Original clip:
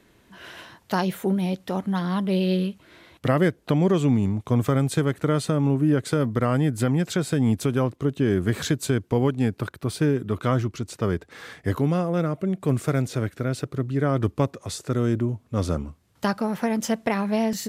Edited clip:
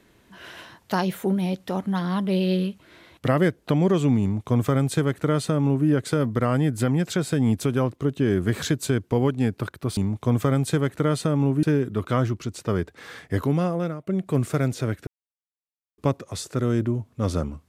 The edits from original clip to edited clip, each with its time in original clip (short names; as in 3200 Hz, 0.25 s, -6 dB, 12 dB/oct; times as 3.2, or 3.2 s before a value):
4.21–5.87 copy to 9.97
12.07–12.41 fade out, to -20.5 dB
13.41–14.32 mute